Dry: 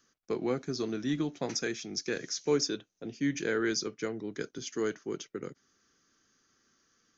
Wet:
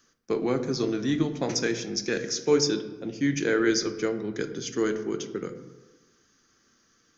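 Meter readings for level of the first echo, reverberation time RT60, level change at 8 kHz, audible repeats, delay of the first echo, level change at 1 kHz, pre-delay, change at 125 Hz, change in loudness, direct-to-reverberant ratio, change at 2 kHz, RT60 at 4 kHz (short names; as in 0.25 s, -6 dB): none, 1.2 s, n/a, none, none, +5.5 dB, 8 ms, +7.0 dB, +6.0 dB, 8.5 dB, +5.5 dB, 0.70 s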